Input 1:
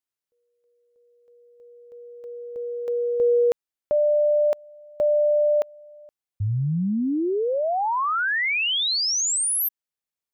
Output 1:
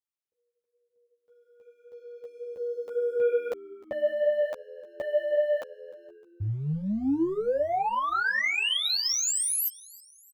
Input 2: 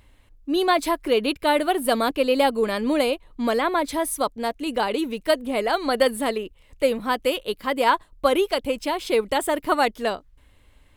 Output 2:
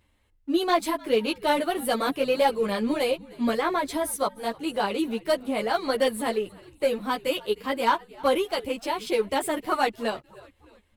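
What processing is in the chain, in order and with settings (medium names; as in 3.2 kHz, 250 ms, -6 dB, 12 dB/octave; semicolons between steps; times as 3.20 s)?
high-pass 51 Hz 6 dB/octave; waveshaping leveller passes 1; on a send: frequency-shifting echo 306 ms, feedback 51%, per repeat -83 Hz, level -22.5 dB; on the sum: three-phase chorus; trim -3.5 dB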